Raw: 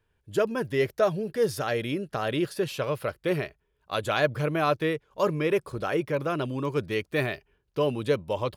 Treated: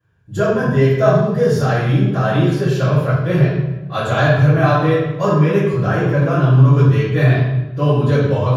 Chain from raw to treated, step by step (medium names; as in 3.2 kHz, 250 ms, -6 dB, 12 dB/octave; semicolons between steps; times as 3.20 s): graphic EQ with 31 bands 125 Hz +8 dB, 315 Hz -4 dB, 1 kHz +4 dB, 1.6 kHz +7 dB; reverberation RT60 1.1 s, pre-delay 3 ms, DRR -15 dB; trim -10.5 dB